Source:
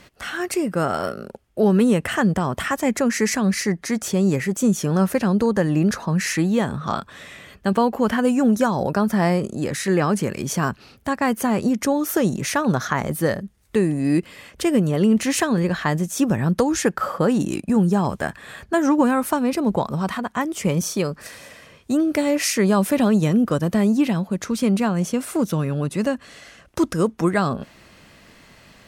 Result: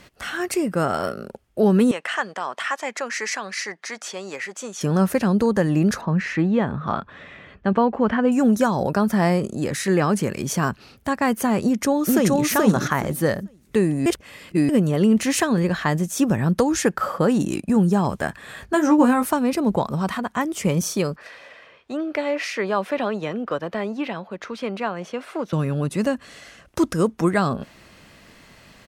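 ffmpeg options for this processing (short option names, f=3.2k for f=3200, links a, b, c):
-filter_complex "[0:a]asettb=1/sr,asplit=3[a][b][c];[a]atrim=end=1.914[d];[b]atrim=start=1.91:end=4.81,asetpts=PTS-STARTPTS,afade=t=in:d=0.004:c=qsin,afade=t=out:st=2.896:d=0.004:c=qsin,highpass=750,lowpass=5.8k[e];[c]atrim=start=4.806[f];[d][e]acrossfade=d=0.004:c1=hsin:c2=qsin[g];[g][f]acrossfade=d=0.004:c1=qsin:c2=hsin,asettb=1/sr,asplit=3[h][i][j];[h]atrim=end=6.014[k];[i]atrim=start=6.01:end=8.32,asetpts=PTS-STARTPTS,afade=t=in:d=0.004:c=qsin,afade=t=out:st=2.306:d=0.004:c=qsin,lowpass=2.5k[l];[j]atrim=start=8.316[m];[k][l]acrossfade=d=0.004:c1=hsin:c2=qsin[n];[n][m]acrossfade=d=0.004:c1=qsin:c2=hsin,asplit=2[o][p];[p]afade=t=in:st=11.64:d=0.01,afade=t=out:st=12.44:d=0.01,aecho=0:1:430|860|1290:0.944061|0.141609|0.0212414[q];[o][q]amix=inputs=2:normalize=0,asettb=1/sr,asplit=3[r][s][t];[r]atrim=end=18.544[u];[s]atrim=start=18.54:end=19.26,asetpts=PTS-STARTPTS,afade=t=in:d=0.004:c=qsin,afade=t=out:st=0.716:d=0.004:c=qsin,asplit=2[v][w];[w]adelay=20,volume=-6.5dB[x];[v][x]amix=inputs=2:normalize=0,atrim=end_sample=31752[y];[t]atrim=start=19.256[z];[u][y]acrossfade=d=0.004:c1=hsin:c2=qsin[aa];[aa][z]acrossfade=d=0.004:c1=qsin:c2=hsin,asettb=1/sr,asplit=3[ab][ac][ad];[ab]atrim=end=21.164[ae];[ac]atrim=start=21.16:end=25.53,asetpts=PTS-STARTPTS,afade=t=in:d=0.004:c=qsin,afade=t=out:st=4.366:d=0.004:c=qsin,acrossover=split=390 4100:gain=0.158 1 0.0708[af][ag][ah];[af][ag][ah]amix=inputs=3:normalize=0[ai];[ad]atrim=start=25.526[aj];[ae][ai]acrossfade=d=0.004:c1=hsin:c2=qsin[ak];[ak][aj]acrossfade=d=0.004:c1=qsin:c2=hsin,asplit=3[al][am][an];[al]atrim=end=14.062[ao];[am]atrim=start=14.058:end=14.692,asetpts=PTS-STARTPTS,areverse[ap];[an]atrim=start=14.688[aq];[ao][ap]acrossfade=d=0.004:c1=hsin:c2=hsin[ar];[ar][aq]acrossfade=d=0.004:c1=hsin:c2=hsin"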